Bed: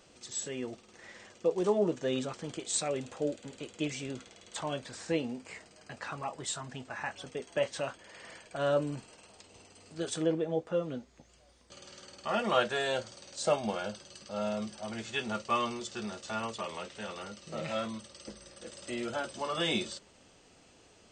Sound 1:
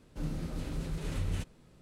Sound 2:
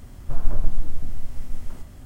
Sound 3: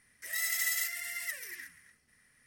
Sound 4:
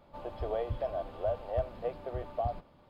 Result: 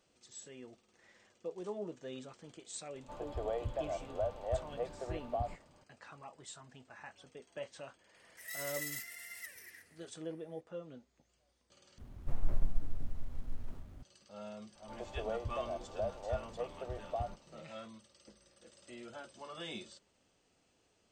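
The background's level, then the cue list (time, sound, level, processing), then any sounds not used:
bed −13.5 dB
0:02.95: mix in 4 −3.5 dB
0:08.15: mix in 3 −10 dB
0:11.98: overwrite with 2 −8.5 dB + windowed peak hold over 17 samples
0:14.75: mix in 4 −5 dB
not used: 1

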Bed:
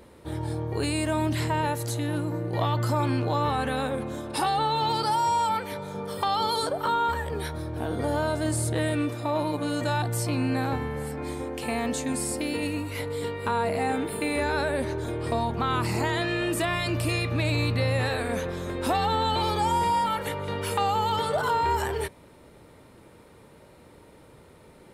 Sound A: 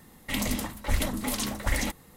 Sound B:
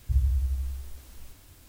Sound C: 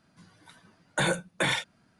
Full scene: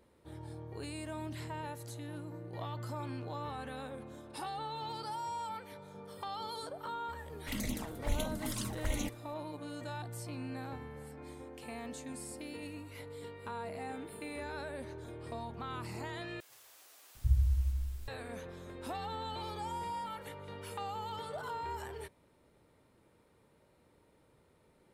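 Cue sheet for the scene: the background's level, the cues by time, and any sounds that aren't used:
bed −15.5 dB
0:07.18: mix in A −7 dB + flanger swept by the level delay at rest 8.9 ms, full sweep at −23.5 dBFS
0:16.40: overwrite with B −3.5 dB + multiband delay without the direct sound highs, lows 750 ms, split 430 Hz
not used: C

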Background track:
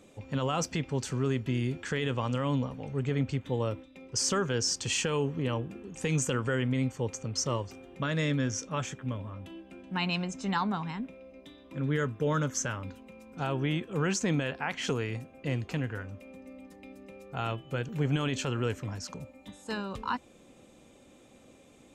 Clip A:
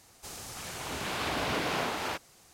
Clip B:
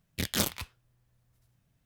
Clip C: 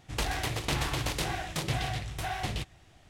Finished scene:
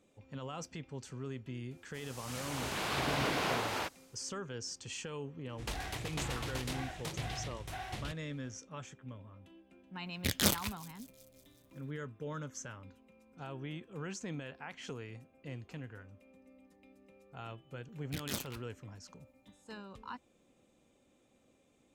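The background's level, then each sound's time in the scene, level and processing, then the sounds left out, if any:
background track −13 dB
0:01.71: mix in A −15 dB + automatic gain control gain up to 13 dB
0:05.49: mix in C −8.5 dB
0:10.06: mix in B −0.5 dB + delay with a high-pass on its return 186 ms, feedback 62%, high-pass 5,000 Hz, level −18.5 dB
0:17.94: mix in B −11 dB

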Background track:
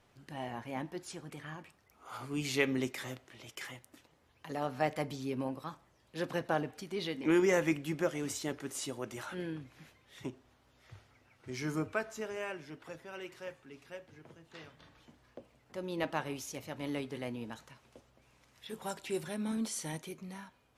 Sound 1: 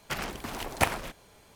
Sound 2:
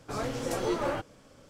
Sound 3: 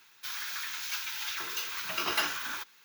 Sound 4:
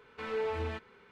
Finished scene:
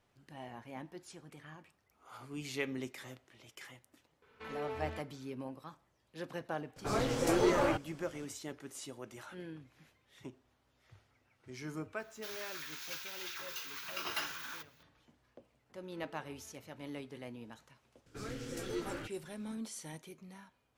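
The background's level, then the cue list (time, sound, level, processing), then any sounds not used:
background track −7 dB
0:04.22: mix in 4 −7 dB
0:06.76: mix in 2
0:11.99: mix in 3 −8.5 dB
0:15.74: mix in 4 −13 dB + downward compressor 2.5 to 1, threshold −52 dBFS
0:18.06: mix in 2 −8 dB + flat-topped bell 800 Hz −11.5 dB 1.2 octaves
not used: 1

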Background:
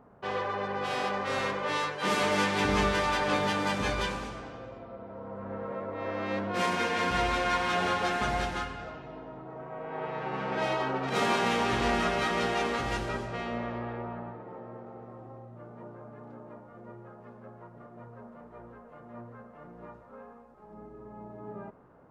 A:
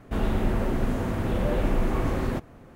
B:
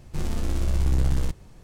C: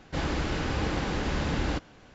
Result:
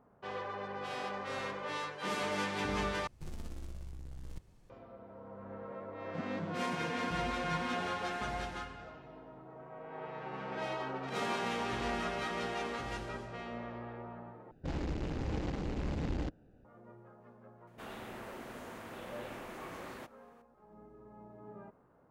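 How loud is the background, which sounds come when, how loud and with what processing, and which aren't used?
background −8.5 dB
0:03.07: overwrite with B −17.5 dB + compressor whose output falls as the input rises −25 dBFS
0:06.00: mix in C −10 dB + vocoder with an arpeggio as carrier bare fifth, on E3, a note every 178 ms
0:14.51: overwrite with C −6 dB + adaptive Wiener filter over 41 samples
0:17.67: mix in A −9.5 dB + high-pass filter 1,000 Hz 6 dB per octave

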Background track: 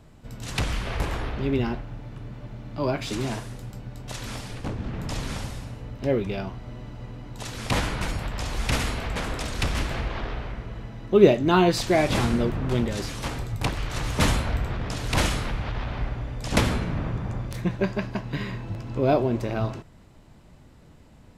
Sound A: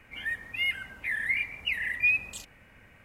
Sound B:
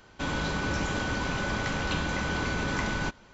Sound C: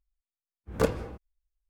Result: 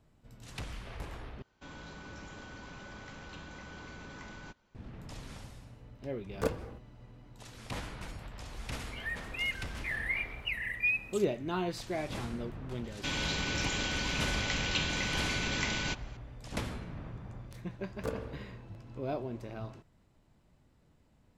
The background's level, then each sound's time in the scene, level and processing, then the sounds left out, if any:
background track −15 dB
0:01.42: overwrite with B −17 dB + soft clipping −18.5 dBFS
0:05.62: mix in C −6.5 dB
0:08.80: mix in A −5.5 dB
0:12.84: mix in B −6 dB + high shelf with overshoot 1,800 Hz +8 dB, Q 1.5
0:17.24: mix in C −12.5 dB + spring reverb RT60 1.2 s, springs 47 ms, chirp 25 ms, DRR 3.5 dB

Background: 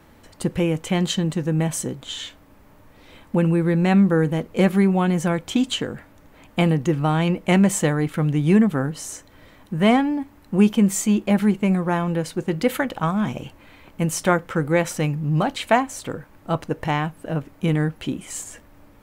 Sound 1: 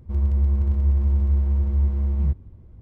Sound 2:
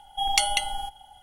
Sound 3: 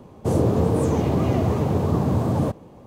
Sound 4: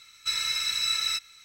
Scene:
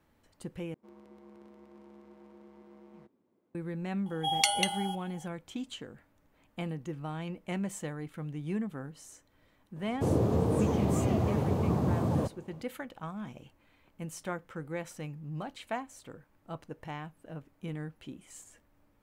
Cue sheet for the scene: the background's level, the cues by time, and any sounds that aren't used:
background −18 dB
0:00.74: overwrite with 1 −11.5 dB + high-pass filter 260 Hz 24 dB per octave
0:04.06: mix in 2 −4 dB + high-pass filter 93 Hz 24 dB per octave
0:09.76: mix in 3 −7.5 dB
not used: 4

